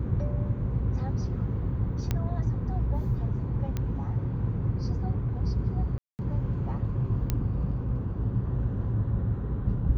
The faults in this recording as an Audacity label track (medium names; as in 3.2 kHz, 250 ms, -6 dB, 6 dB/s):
2.110000	2.110000	pop -14 dBFS
3.770000	3.770000	pop -18 dBFS
5.980000	6.190000	dropout 209 ms
7.300000	7.300000	pop -13 dBFS